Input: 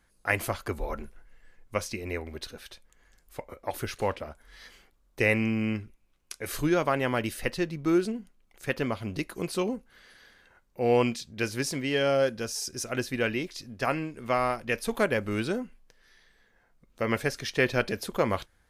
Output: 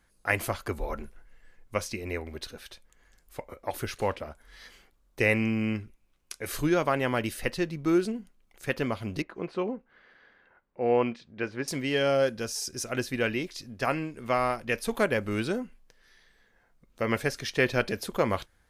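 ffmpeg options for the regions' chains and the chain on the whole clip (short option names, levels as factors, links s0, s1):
-filter_complex "[0:a]asettb=1/sr,asplit=3[s0][s1][s2];[s0]atrim=end=9.224[s3];[s1]atrim=start=9.22:end=11.68,asetpts=PTS-STARTPTS,afade=t=in:d=0.004:c=qsin,afade=t=out:st=2.456:d=0.004:c=qsin,lowpass=2000,lowshelf=f=130:g=-12[s4];[s2]atrim=start=11.676[s5];[s3][s4]acrossfade=d=0.004:c1=hsin:c2=qsin[s6];[s6][s5]acrossfade=d=0.004:c1=qsin:c2=hsin"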